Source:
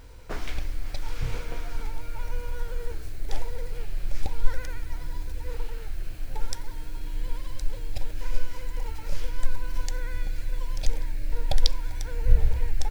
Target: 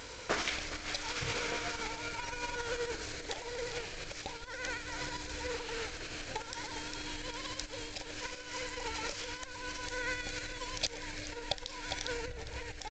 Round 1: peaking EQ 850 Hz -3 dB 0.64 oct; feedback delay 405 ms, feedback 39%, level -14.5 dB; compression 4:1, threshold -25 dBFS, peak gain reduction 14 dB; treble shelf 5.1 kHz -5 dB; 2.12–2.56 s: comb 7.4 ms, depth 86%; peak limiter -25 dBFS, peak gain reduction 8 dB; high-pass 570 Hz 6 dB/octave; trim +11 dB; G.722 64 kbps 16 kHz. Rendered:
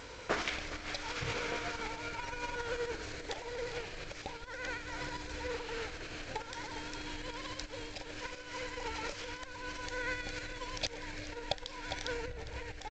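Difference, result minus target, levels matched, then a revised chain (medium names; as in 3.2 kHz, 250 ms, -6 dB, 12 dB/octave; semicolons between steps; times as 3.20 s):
8 kHz band -4.5 dB
peaking EQ 850 Hz -3 dB 0.64 oct; feedback delay 405 ms, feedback 39%, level -14.5 dB; compression 4:1, threshold -25 dBFS, peak gain reduction 14 dB; treble shelf 5.1 kHz +6 dB; 2.12–2.56 s: comb 7.4 ms, depth 86%; peak limiter -25 dBFS, peak gain reduction 11 dB; high-pass 570 Hz 6 dB/octave; trim +11 dB; G.722 64 kbps 16 kHz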